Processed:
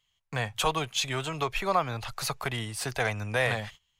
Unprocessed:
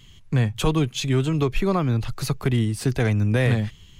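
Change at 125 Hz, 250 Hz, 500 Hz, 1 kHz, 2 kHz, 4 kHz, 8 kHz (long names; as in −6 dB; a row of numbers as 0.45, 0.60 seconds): −14.5, −15.5, −6.0, +2.0, +0.5, 0.0, 0.0 decibels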